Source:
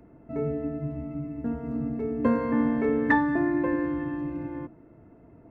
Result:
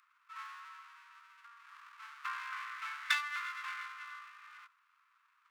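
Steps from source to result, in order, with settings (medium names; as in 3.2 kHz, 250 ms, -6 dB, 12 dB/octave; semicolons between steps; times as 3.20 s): comb filter that takes the minimum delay 0.8 ms; steep high-pass 1.1 kHz 72 dB/octave; 1.13–1.67 s: compression, threshold -52 dBFS, peak gain reduction 6 dB; trim -2 dB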